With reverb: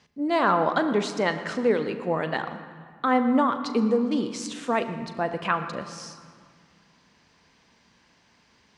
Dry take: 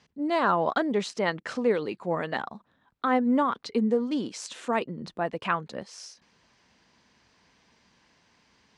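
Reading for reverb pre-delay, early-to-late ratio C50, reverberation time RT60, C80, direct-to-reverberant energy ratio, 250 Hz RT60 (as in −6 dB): 38 ms, 10.0 dB, 1.9 s, 10.5 dB, 8.5 dB, 2.7 s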